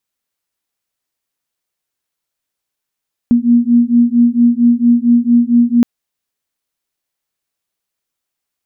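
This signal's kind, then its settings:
two tones that beat 236 Hz, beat 4.4 Hz, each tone −10.5 dBFS 2.52 s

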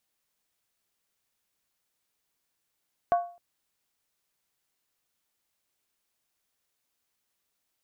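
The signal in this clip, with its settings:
struck skin length 0.26 s, lowest mode 698 Hz, decay 0.40 s, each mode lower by 10.5 dB, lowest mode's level −17 dB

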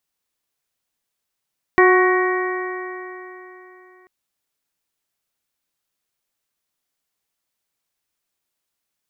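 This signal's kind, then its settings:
stiff-string partials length 2.29 s, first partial 365 Hz, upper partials −8/−5/−13.5/−3.5/−15 dB, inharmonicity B 0.0026, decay 3.40 s, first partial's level −11 dB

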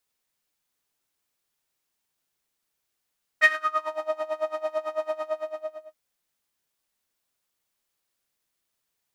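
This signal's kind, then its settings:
subtractive patch with tremolo D#5, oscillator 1 saw, sub −17.5 dB, noise −11 dB, filter bandpass, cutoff 700 Hz, Q 6.4, filter envelope 1.5 octaves, filter decay 0.57 s, filter sustain 15%, attack 72 ms, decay 0.05 s, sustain −18 dB, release 0.80 s, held 1.73 s, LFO 9 Hz, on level 21.5 dB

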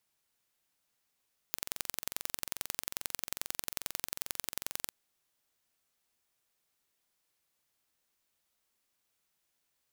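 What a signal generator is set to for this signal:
impulse train 22.4 per second, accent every 2, −5.5 dBFS 3.37 s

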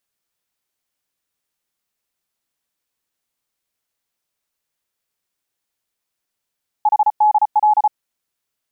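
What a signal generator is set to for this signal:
Morse code "HDL" 34 words per minute 847 Hz −9.5 dBFS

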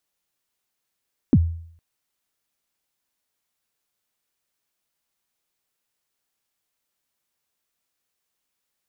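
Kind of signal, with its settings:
synth kick length 0.46 s, from 320 Hz, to 83 Hz, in 48 ms, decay 0.61 s, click off, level −8.5 dB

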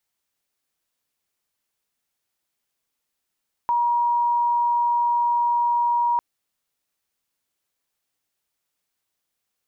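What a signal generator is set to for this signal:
tone sine 953 Hz −17.5 dBFS 2.50 s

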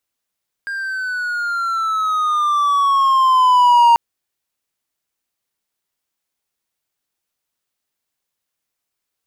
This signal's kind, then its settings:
pitch glide with a swell triangle, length 3.29 s, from 1,610 Hz, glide −9.5 semitones, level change +15 dB, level −5 dB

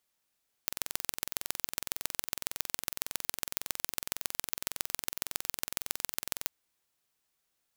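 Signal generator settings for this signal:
impulse train 21.8 per second, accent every 3, −2 dBFS 5.79 s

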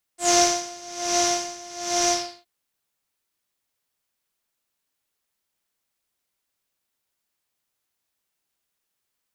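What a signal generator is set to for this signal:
subtractive patch with tremolo F5, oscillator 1 triangle, sub −8 dB, noise −3 dB, filter lowpass, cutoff 4,200 Hz, Q 6.1, filter envelope 1 octave, filter decay 0.14 s, filter sustain 50%, attack 113 ms, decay 0.32 s, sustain −5 dB, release 0.34 s, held 1.93 s, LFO 1.2 Hz, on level 19.5 dB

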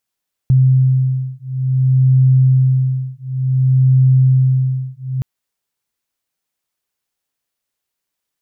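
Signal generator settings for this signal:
two tones that beat 130 Hz, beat 0.56 Hz, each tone −13 dBFS 4.72 s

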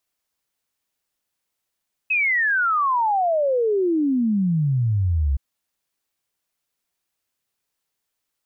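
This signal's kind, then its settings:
exponential sine sweep 2,600 Hz → 65 Hz 3.27 s −17 dBFS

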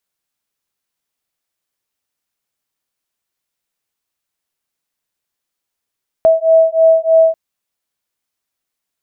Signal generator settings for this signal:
two tones that beat 648 Hz, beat 3.2 Hz, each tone −10.5 dBFS 1.09 s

